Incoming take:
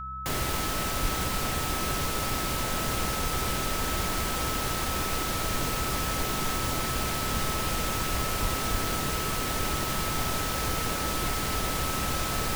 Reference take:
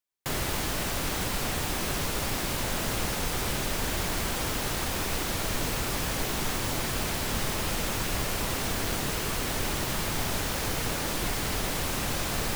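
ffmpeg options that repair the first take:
-filter_complex "[0:a]bandreject=f=65.4:t=h:w=4,bandreject=f=130.8:t=h:w=4,bandreject=f=196.2:t=h:w=4,bandreject=f=1.3k:w=30,asplit=3[a][b][c];[a]afade=t=out:st=1.01:d=0.02[d];[b]highpass=f=140:w=0.5412,highpass=f=140:w=1.3066,afade=t=in:st=1.01:d=0.02,afade=t=out:st=1.13:d=0.02[e];[c]afade=t=in:st=1.13:d=0.02[f];[d][e][f]amix=inputs=3:normalize=0,asplit=3[g][h][i];[g]afade=t=out:st=8.41:d=0.02[j];[h]highpass=f=140:w=0.5412,highpass=f=140:w=1.3066,afade=t=in:st=8.41:d=0.02,afade=t=out:st=8.53:d=0.02[k];[i]afade=t=in:st=8.53:d=0.02[l];[j][k][l]amix=inputs=3:normalize=0,asplit=3[m][n][o];[m]afade=t=out:st=8.71:d=0.02[p];[n]highpass=f=140:w=0.5412,highpass=f=140:w=1.3066,afade=t=in:st=8.71:d=0.02,afade=t=out:st=8.83:d=0.02[q];[o]afade=t=in:st=8.83:d=0.02[r];[p][q][r]amix=inputs=3:normalize=0"

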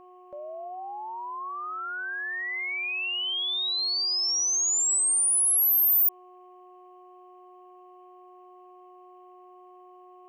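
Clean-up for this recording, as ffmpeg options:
-af "bandreject=f=363.8:t=h:w=4,bandreject=f=727.6:t=h:w=4,bandreject=f=1.0914k:t=h:w=4,agate=range=-21dB:threshold=-43dB"

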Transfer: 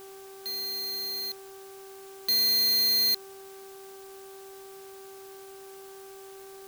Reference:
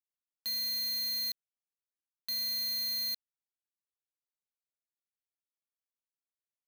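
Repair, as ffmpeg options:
-af "bandreject=f=388.3:t=h:w=4,bandreject=f=776.6:t=h:w=4,bandreject=f=1.1649k:t=h:w=4,bandreject=f=1.5532k:t=h:w=4,afwtdn=0.0022,asetnsamples=n=441:p=0,asendcmd='1.73 volume volume -10dB',volume=0dB"

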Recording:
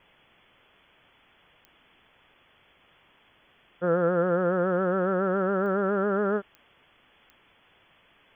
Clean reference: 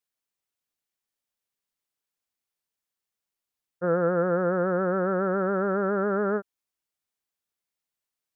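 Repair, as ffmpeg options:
-af "adeclick=t=4,afwtdn=0.002"

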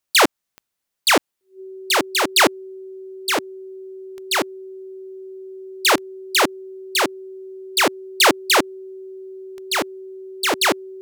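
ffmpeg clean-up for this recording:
-af "adeclick=t=4,bandreject=f=380:w=30"

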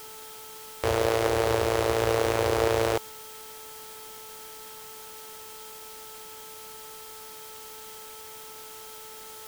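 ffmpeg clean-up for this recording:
-af "bandreject=f=436.9:t=h:w=4,bandreject=f=873.8:t=h:w=4,bandreject=f=1.3107k:t=h:w=4,bandreject=f=3.2k:w=30,afwtdn=0.0056"

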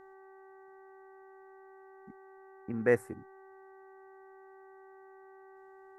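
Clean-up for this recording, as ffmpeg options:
-af "bandreject=f=384.8:t=h:w=4,bandreject=f=769.6:t=h:w=4,bandreject=f=1.1544k:t=h:w=4,bandreject=f=1.5392k:t=h:w=4,bandreject=f=1.924k:t=h:w=4,bandreject=f=840:w=30,agate=range=-21dB:threshold=-47dB"

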